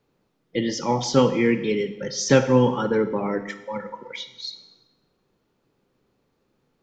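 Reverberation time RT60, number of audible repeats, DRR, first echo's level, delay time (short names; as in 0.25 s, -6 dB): 1.0 s, none, 9.5 dB, none, none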